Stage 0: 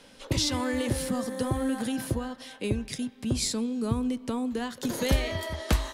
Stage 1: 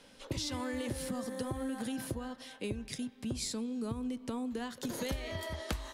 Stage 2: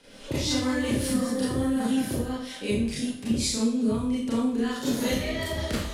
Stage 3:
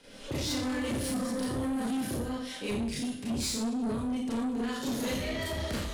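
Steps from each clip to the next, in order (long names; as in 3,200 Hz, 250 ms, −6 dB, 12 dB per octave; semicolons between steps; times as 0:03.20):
downward compressor 6 to 1, threshold −28 dBFS, peak gain reduction 10 dB; level −5 dB
rotating-speaker cabinet horn 5.5 Hz; four-comb reverb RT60 0.53 s, combs from 27 ms, DRR −8 dB; level +4 dB
soft clipping −27 dBFS, distortion −11 dB; level −1 dB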